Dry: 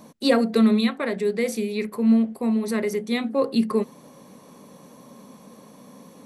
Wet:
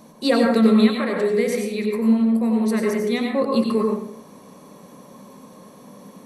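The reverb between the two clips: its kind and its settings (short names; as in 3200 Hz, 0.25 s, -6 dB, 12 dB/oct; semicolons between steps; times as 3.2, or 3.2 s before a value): plate-style reverb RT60 0.7 s, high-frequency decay 0.45×, pre-delay 80 ms, DRR 0 dB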